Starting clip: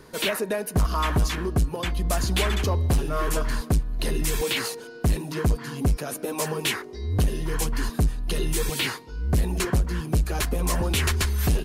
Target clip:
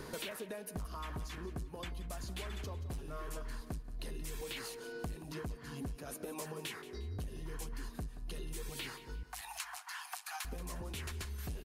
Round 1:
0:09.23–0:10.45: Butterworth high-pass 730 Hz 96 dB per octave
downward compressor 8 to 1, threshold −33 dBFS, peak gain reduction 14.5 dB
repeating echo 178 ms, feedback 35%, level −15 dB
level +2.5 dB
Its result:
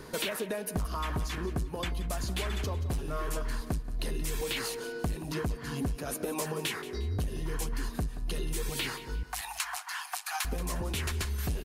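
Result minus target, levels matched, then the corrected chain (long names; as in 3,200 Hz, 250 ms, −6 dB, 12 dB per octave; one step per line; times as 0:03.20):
downward compressor: peak gain reduction −9.5 dB
0:09.23–0:10.45: Butterworth high-pass 730 Hz 96 dB per octave
downward compressor 8 to 1, threshold −44 dBFS, peak gain reduction 24 dB
repeating echo 178 ms, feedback 35%, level −15 dB
level +2.5 dB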